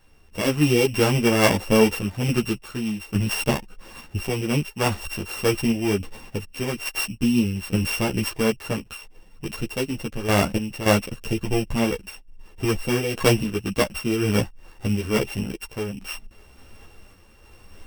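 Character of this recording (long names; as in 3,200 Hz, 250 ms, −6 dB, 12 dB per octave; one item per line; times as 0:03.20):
a buzz of ramps at a fixed pitch in blocks of 16 samples
sample-and-hold tremolo 3.5 Hz, depth 70%
a shimmering, thickened sound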